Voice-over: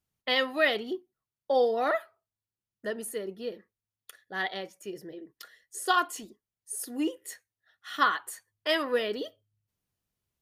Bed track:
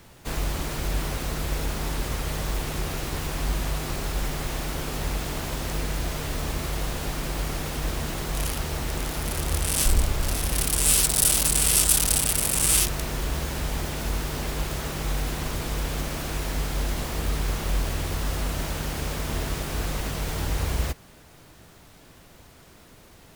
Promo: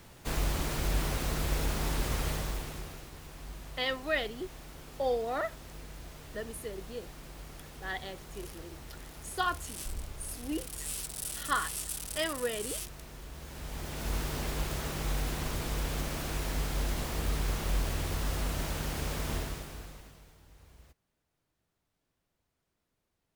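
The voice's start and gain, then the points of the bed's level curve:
3.50 s, −6.0 dB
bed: 0:02.27 −3 dB
0:03.12 −18 dB
0:13.33 −18 dB
0:14.15 −5 dB
0:19.34 −5 dB
0:20.40 −31 dB

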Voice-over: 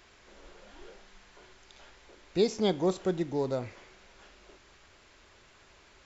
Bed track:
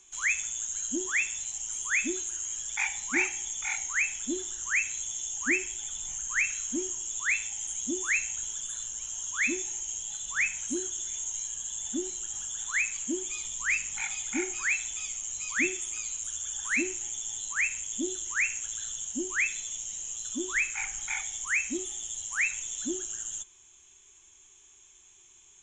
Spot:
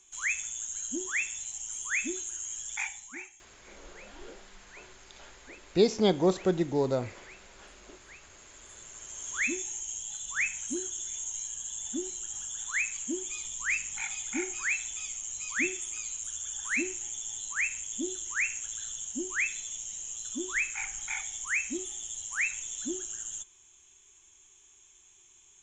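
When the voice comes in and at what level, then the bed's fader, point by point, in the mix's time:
3.40 s, +3.0 dB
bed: 0:02.78 −3 dB
0:03.47 −25.5 dB
0:08.21 −25.5 dB
0:09.34 −2 dB

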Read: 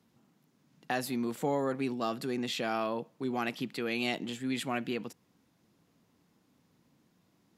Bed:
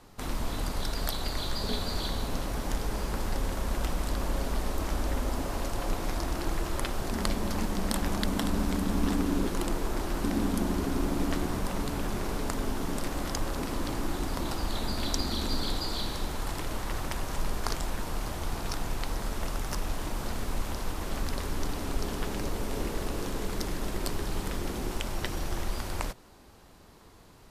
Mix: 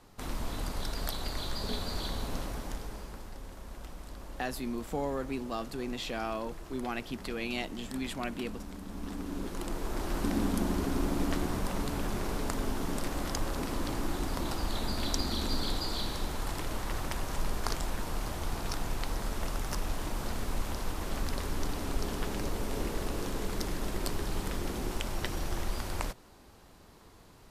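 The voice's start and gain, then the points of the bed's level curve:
3.50 s, −3.0 dB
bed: 0:02.41 −3.5 dB
0:03.32 −14.5 dB
0:08.81 −14.5 dB
0:10.14 −1.5 dB

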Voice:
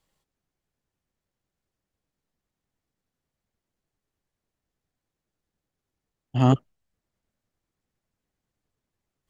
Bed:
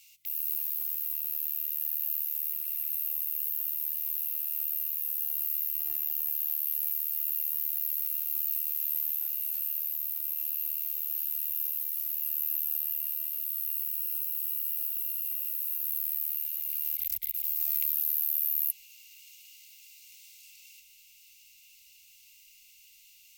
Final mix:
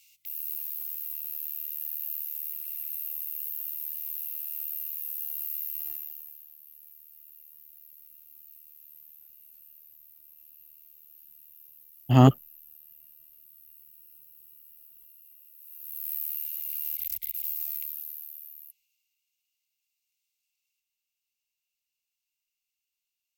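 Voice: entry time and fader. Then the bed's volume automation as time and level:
5.75 s, +2.5 dB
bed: 0:05.88 −3 dB
0:06.50 −21 dB
0:15.52 −21 dB
0:16.12 −1 dB
0:17.47 −1 dB
0:19.24 −29 dB

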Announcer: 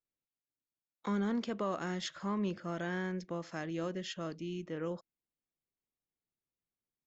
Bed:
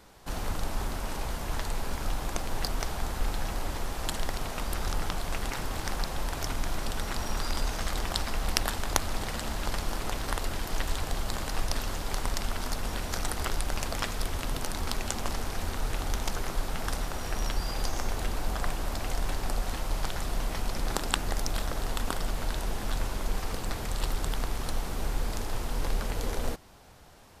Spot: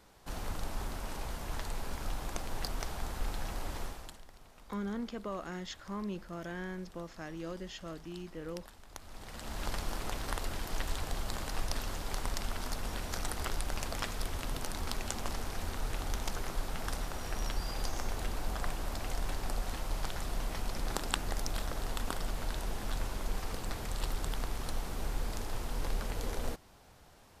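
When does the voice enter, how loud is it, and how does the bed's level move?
3.65 s, −4.0 dB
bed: 0:03.85 −6 dB
0:04.24 −23.5 dB
0:08.88 −23.5 dB
0:09.62 −5 dB

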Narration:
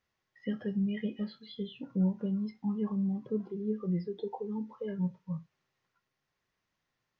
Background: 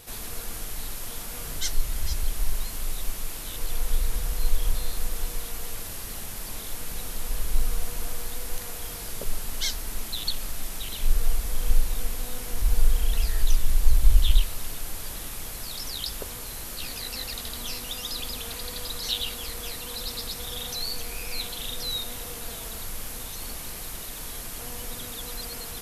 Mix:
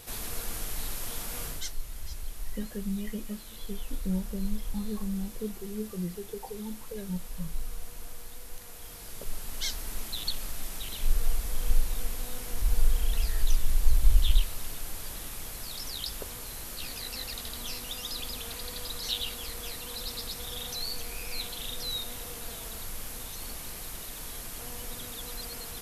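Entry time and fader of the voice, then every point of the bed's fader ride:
2.10 s, −2.5 dB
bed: 0:01.44 −0.5 dB
0:01.74 −11 dB
0:08.59 −11 dB
0:09.81 −3.5 dB

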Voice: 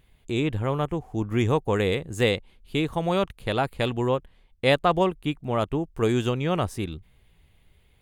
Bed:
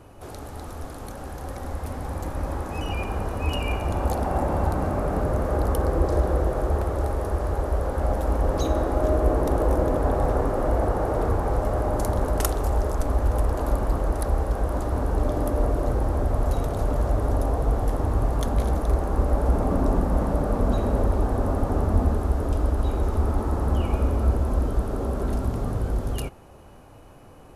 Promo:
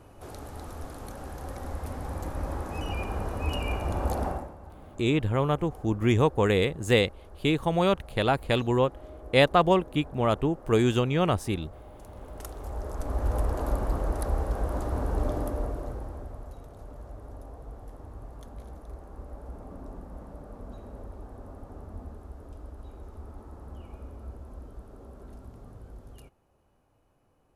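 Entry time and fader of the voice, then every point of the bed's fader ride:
4.70 s, +0.5 dB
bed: 0:04.28 −4 dB
0:04.56 −23.5 dB
0:11.98 −23.5 dB
0:13.31 −4.5 dB
0:15.31 −4.5 dB
0:16.55 −20.5 dB

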